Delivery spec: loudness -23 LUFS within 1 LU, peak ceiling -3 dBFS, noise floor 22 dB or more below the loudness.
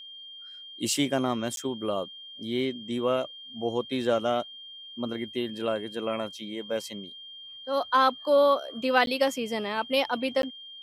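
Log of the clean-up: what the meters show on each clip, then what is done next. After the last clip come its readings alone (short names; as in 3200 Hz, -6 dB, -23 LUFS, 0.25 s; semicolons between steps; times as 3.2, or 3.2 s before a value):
dropouts 3; longest dropout 12 ms; steady tone 3200 Hz; tone level -42 dBFS; loudness -28.0 LUFS; peak -9.0 dBFS; loudness target -23.0 LUFS
-> interpolate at 1.56/9.06/10.42, 12 ms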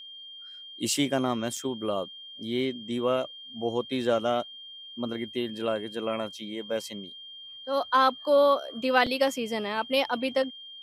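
dropouts 0; steady tone 3200 Hz; tone level -42 dBFS
-> notch 3200 Hz, Q 30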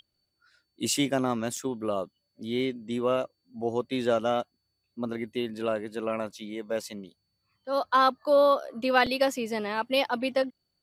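steady tone none; loudness -28.0 LUFS; peak -9.0 dBFS; loudness target -23.0 LUFS
-> gain +5 dB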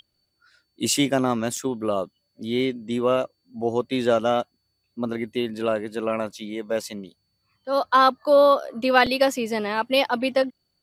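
loudness -23.0 LUFS; peak -4.0 dBFS; noise floor -74 dBFS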